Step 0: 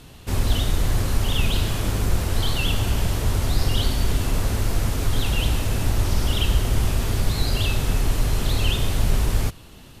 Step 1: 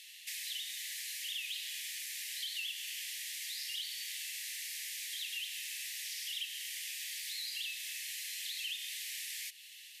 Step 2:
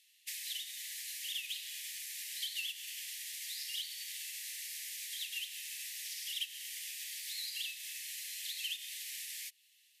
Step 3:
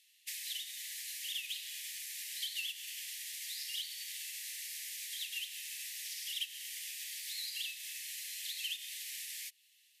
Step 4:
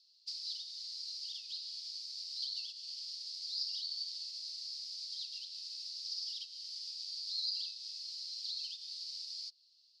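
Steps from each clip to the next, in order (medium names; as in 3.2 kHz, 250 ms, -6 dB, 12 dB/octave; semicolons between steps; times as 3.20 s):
steep high-pass 1.8 kHz 96 dB/octave; compression 3:1, threshold -41 dBFS, peak gain reduction 13 dB
treble shelf 5.1 kHz +5 dB; upward expansion 2.5:1, over -48 dBFS; trim +1.5 dB
no audible change
Butterworth band-pass 4.7 kHz, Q 5; trim +10.5 dB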